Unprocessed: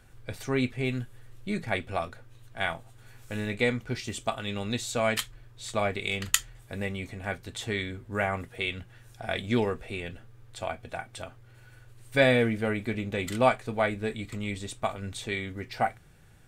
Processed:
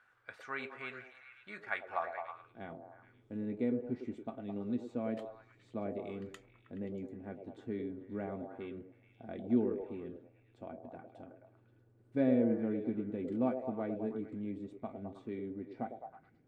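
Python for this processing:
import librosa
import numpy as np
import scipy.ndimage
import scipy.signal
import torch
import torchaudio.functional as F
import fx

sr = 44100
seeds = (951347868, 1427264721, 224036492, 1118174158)

y = fx.filter_sweep_bandpass(x, sr, from_hz=1400.0, to_hz=270.0, start_s=1.82, end_s=2.62, q=2.5)
y = fx.echo_stepped(y, sr, ms=106, hz=460.0, octaves=0.7, feedback_pct=70, wet_db=-2.5)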